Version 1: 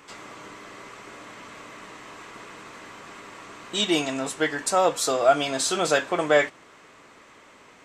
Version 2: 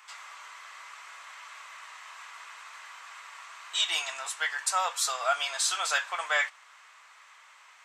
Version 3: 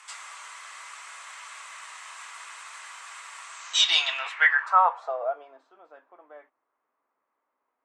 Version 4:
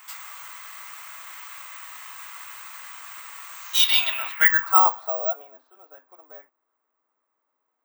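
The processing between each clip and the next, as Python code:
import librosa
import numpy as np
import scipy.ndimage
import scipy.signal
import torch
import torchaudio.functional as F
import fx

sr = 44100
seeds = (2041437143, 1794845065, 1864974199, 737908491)

y1 = scipy.signal.sosfilt(scipy.signal.butter(4, 930.0, 'highpass', fs=sr, output='sos'), x)
y1 = F.gain(torch.from_numpy(y1), -1.5).numpy()
y2 = fx.filter_sweep_lowpass(y1, sr, from_hz=9300.0, to_hz=250.0, start_s=3.47, end_s=5.7, q=3.4)
y2 = F.gain(torch.from_numpy(y2), 2.5).numpy()
y3 = (np.kron(scipy.signal.resample_poly(y2, 1, 2), np.eye(2)[0]) * 2)[:len(y2)]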